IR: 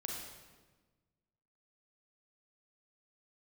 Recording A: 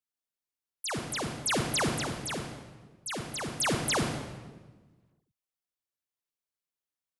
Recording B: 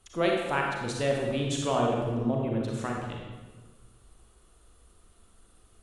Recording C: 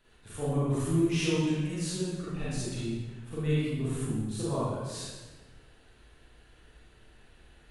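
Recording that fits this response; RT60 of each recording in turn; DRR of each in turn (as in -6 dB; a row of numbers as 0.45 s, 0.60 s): B; 1.3 s, 1.3 s, 1.3 s; 4.0 dB, -1.0 dB, -9.0 dB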